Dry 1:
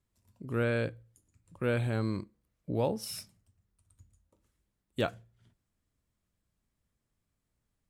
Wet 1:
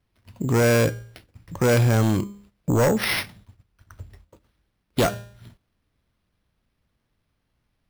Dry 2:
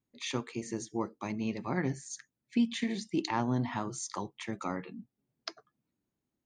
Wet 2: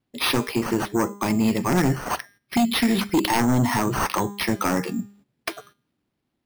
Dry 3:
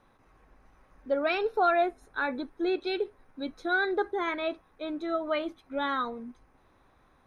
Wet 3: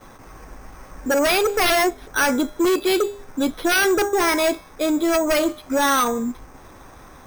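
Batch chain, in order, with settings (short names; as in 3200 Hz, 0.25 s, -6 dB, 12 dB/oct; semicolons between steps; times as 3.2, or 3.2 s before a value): in parallel at 0 dB: compressor, threshold -42 dBFS; on the sum: de-hum 202.1 Hz, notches 21; sine folder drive 11 dB, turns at -13 dBFS; gate -48 dBFS, range -11 dB; careless resampling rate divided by 6×, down none, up hold; gain -1.5 dB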